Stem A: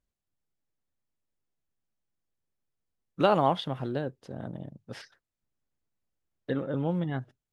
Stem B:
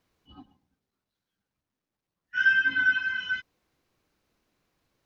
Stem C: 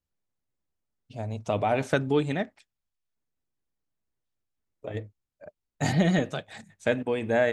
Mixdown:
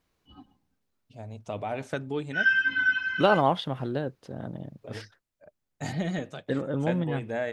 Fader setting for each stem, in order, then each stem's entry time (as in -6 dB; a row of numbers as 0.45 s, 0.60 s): +1.5 dB, -1.0 dB, -7.5 dB; 0.00 s, 0.00 s, 0.00 s